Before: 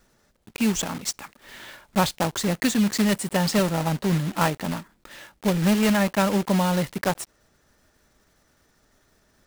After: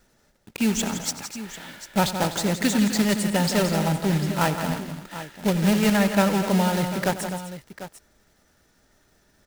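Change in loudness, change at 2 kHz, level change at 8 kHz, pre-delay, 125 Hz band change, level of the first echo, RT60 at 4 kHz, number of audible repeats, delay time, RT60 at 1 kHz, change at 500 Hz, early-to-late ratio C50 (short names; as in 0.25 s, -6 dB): +0.5 dB, +1.0 dB, +1.0 dB, none, +1.0 dB, -15.0 dB, none, 4, 92 ms, none, +1.0 dB, none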